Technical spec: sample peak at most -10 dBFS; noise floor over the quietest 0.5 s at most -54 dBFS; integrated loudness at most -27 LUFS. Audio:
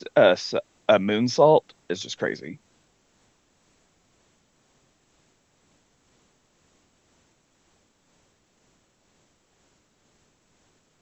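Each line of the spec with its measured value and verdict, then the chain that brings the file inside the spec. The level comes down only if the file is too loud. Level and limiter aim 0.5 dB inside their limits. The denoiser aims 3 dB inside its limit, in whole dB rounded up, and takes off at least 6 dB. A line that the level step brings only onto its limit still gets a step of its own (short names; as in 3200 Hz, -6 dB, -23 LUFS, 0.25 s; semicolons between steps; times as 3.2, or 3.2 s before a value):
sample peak -4.5 dBFS: fail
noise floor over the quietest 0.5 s -65 dBFS: OK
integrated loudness -22.0 LUFS: fail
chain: gain -5.5 dB; limiter -10.5 dBFS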